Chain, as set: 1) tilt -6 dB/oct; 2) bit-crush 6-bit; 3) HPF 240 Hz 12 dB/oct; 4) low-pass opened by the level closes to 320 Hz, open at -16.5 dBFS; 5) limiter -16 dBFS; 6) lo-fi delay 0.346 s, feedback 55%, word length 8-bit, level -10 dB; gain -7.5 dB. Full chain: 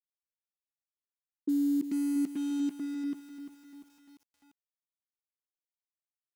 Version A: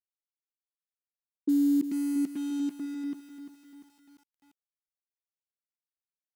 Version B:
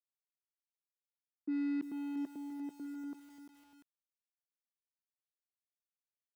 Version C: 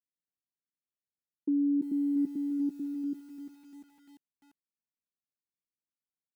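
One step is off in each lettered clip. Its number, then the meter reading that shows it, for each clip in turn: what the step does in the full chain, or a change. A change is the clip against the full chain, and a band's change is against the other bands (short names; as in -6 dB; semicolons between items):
5, momentary loudness spread change +4 LU; 1, momentary loudness spread change +3 LU; 2, distortion -24 dB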